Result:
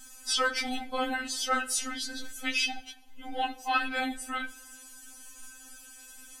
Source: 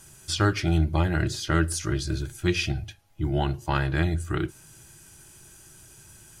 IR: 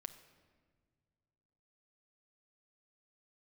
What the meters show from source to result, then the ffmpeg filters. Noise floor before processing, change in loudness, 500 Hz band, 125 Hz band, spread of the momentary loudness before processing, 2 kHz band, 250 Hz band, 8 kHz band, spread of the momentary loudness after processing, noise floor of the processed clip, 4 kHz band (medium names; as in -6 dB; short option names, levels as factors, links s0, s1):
-52 dBFS, -4.0 dB, -7.0 dB, under -35 dB, 8 LU, +0.5 dB, -10.0 dB, +1.5 dB, 19 LU, -51 dBFS, +1.5 dB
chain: -filter_complex "[0:a]asplit=2[s0][s1];[1:a]atrim=start_sample=2205,asetrate=57330,aresample=44100[s2];[s1][s2]afir=irnorm=-1:irlink=0,volume=1.5[s3];[s0][s3]amix=inputs=2:normalize=0,afftfilt=real='re*3.46*eq(mod(b,12),0)':imag='im*3.46*eq(mod(b,12),0)':win_size=2048:overlap=0.75"